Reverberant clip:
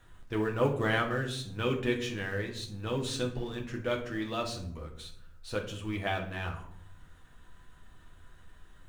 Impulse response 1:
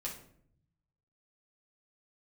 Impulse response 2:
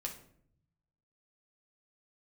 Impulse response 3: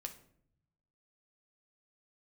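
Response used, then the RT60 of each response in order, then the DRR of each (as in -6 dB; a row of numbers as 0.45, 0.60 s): 2; 0.65, 0.65, 0.65 s; -4.5, 0.5, 4.5 dB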